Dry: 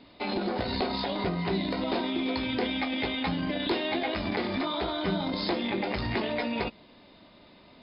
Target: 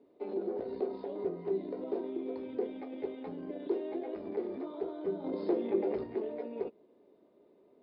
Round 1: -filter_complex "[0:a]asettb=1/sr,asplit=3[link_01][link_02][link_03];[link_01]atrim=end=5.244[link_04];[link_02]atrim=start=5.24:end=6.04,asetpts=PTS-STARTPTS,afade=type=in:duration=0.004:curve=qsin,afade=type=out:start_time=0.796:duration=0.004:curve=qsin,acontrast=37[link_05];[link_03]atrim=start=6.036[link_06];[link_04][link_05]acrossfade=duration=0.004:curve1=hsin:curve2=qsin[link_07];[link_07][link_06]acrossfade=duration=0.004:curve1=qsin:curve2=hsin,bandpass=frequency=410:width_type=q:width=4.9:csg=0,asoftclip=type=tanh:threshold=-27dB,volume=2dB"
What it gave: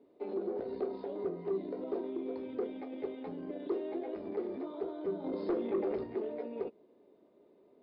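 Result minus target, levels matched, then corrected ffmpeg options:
soft clipping: distortion +19 dB
-filter_complex "[0:a]asettb=1/sr,asplit=3[link_01][link_02][link_03];[link_01]atrim=end=5.244[link_04];[link_02]atrim=start=5.24:end=6.04,asetpts=PTS-STARTPTS,afade=type=in:duration=0.004:curve=qsin,afade=type=out:start_time=0.796:duration=0.004:curve=qsin,acontrast=37[link_05];[link_03]atrim=start=6.036[link_06];[link_04][link_05]acrossfade=duration=0.004:curve1=hsin:curve2=qsin[link_07];[link_07][link_06]acrossfade=duration=0.004:curve1=qsin:curve2=hsin,bandpass=frequency=410:width_type=q:width=4.9:csg=0,asoftclip=type=tanh:threshold=-15dB,volume=2dB"

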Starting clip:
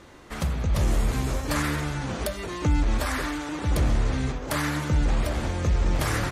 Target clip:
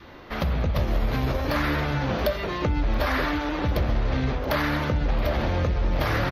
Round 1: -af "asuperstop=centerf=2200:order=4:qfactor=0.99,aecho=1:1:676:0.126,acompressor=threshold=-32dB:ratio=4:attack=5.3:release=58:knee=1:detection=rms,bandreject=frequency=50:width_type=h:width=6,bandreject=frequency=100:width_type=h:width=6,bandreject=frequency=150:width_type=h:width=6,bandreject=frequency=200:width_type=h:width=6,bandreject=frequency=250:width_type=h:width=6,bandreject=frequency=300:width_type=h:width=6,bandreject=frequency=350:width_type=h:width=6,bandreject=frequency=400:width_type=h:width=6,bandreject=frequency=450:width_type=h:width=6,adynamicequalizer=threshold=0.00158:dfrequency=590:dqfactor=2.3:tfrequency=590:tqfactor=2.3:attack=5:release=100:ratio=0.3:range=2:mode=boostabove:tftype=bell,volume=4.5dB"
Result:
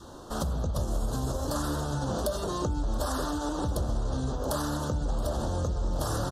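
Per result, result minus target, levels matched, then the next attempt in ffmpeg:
8,000 Hz band +15.0 dB; downward compressor: peak gain reduction +5.5 dB
-af "asuperstop=centerf=8400:order=4:qfactor=0.99,aecho=1:1:676:0.126,acompressor=threshold=-32dB:ratio=4:attack=5.3:release=58:knee=1:detection=rms,bandreject=frequency=50:width_type=h:width=6,bandreject=frequency=100:width_type=h:width=6,bandreject=frequency=150:width_type=h:width=6,bandreject=frequency=200:width_type=h:width=6,bandreject=frequency=250:width_type=h:width=6,bandreject=frequency=300:width_type=h:width=6,bandreject=frequency=350:width_type=h:width=6,bandreject=frequency=400:width_type=h:width=6,bandreject=frequency=450:width_type=h:width=6,adynamicequalizer=threshold=0.00158:dfrequency=590:dqfactor=2.3:tfrequency=590:tqfactor=2.3:attack=5:release=100:ratio=0.3:range=2:mode=boostabove:tftype=bell,volume=4.5dB"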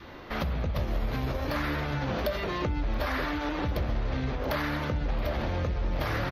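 downward compressor: peak gain reduction +5.5 dB
-af "asuperstop=centerf=8400:order=4:qfactor=0.99,aecho=1:1:676:0.126,acompressor=threshold=-24.5dB:ratio=4:attack=5.3:release=58:knee=1:detection=rms,bandreject=frequency=50:width_type=h:width=6,bandreject=frequency=100:width_type=h:width=6,bandreject=frequency=150:width_type=h:width=6,bandreject=frequency=200:width_type=h:width=6,bandreject=frequency=250:width_type=h:width=6,bandreject=frequency=300:width_type=h:width=6,bandreject=frequency=350:width_type=h:width=6,bandreject=frequency=400:width_type=h:width=6,bandreject=frequency=450:width_type=h:width=6,adynamicequalizer=threshold=0.00158:dfrequency=590:dqfactor=2.3:tfrequency=590:tqfactor=2.3:attack=5:release=100:ratio=0.3:range=2:mode=boostabove:tftype=bell,volume=4.5dB"

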